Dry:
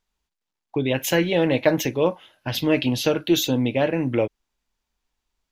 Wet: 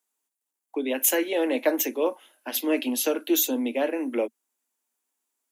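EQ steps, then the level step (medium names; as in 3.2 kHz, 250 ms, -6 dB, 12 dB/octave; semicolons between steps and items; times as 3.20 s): steep high-pass 230 Hz 96 dB/octave; resonant high shelf 6.5 kHz +12 dB, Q 1.5; -4.0 dB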